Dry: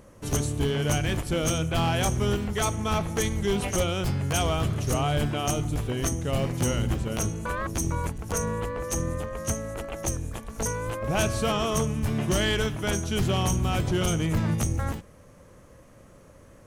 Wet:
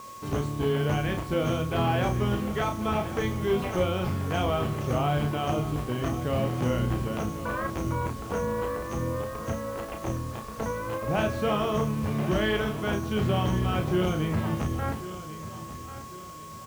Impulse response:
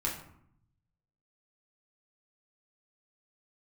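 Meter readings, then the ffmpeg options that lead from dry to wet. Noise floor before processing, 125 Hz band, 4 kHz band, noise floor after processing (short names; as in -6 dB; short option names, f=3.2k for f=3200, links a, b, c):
-52 dBFS, -1.5 dB, -5.5 dB, -41 dBFS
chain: -filter_complex "[0:a]lowpass=7.6k,aeval=exprs='val(0)+0.01*sin(2*PI*1100*n/s)':c=same,highpass=f=120:p=1,highshelf=f=3.1k:g=-10,acrossover=split=3700[a][b];[b]acompressor=threshold=-51dB:ratio=4:attack=1:release=60[c];[a][c]amix=inputs=2:normalize=0,acrusher=bits=7:mix=0:aa=0.000001,asplit=2[d][e];[e]adelay=33,volume=-5.5dB[f];[d][f]amix=inputs=2:normalize=0,asplit=2[g][h];[h]aecho=0:1:1093|2186|3279|4372:0.2|0.0818|0.0335|0.0138[i];[g][i]amix=inputs=2:normalize=0"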